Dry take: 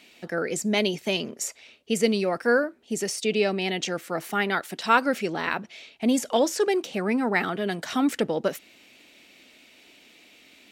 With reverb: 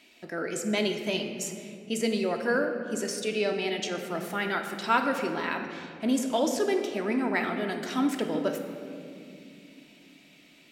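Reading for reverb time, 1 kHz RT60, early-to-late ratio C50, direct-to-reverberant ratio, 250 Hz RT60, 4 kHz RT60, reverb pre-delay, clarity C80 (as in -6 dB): 2.5 s, 2.1 s, 6.0 dB, 3.5 dB, 4.7 s, 1.4 s, 3 ms, 7.5 dB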